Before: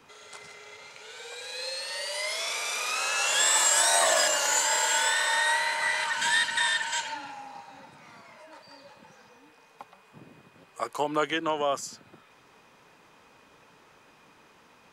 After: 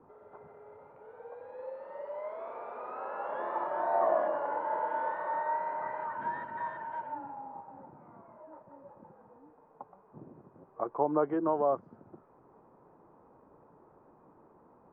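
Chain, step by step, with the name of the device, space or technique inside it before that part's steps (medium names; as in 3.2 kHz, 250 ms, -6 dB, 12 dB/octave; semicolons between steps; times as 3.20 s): under water (low-pass 1 kHz 24 dB/octave; peaking EQ 350 Hz +5 dB 0.27 oct)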